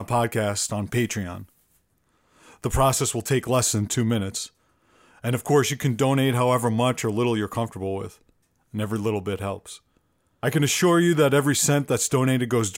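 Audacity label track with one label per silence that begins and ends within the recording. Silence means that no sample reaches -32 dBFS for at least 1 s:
1.430000	2.640000	silence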